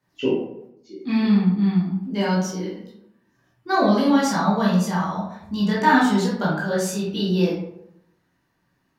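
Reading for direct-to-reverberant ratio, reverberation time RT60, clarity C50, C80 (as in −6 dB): −7.5 dB, 0.75 s, 1.5 dB, 6.0 dB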